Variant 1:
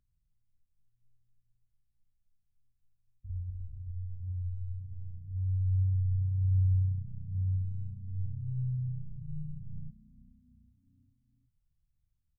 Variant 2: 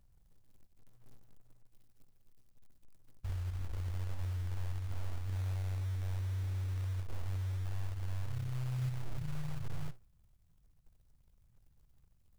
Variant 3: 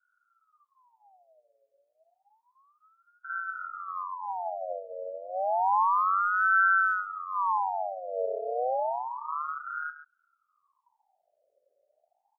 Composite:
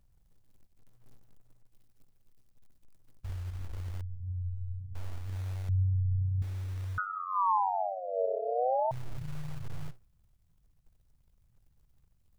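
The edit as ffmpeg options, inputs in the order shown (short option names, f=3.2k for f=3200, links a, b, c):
-filter_complex "[0:a]asplit=2[a][b];[1:a]asplit=4[c][d][e][f];[c]atrim=end=4.012[g];[a]atrim=start=4.008:end=4.952[h];[d]atrim=start=4.948:end=5.692[i];[b]atrim=start=5.688:end=6.422[j];[e]atrim=start=6.418:end=6.982[k];[2:a]atrim=start=6.978:end=8.912[l];[f]atrim=start=8.908[m];[g][h]acrossfade=d=0.004:c1=hsin:c2=hsin[n];[n][i]acrossfade=d=0.004:c1=hsin:c2=hsin[o];[o][j]acrossfade=d=0.004:c1=hsin:c2=hsin[p];[p][k]acrossfade=d=0.004:c1=hsin:c2=hsin[q];[q][l]acrossfade=d=0.004:c1=hsin:c2=hsin[r];[r][m]acrossfade=d=0.004:c1=hsin:c2=hsin"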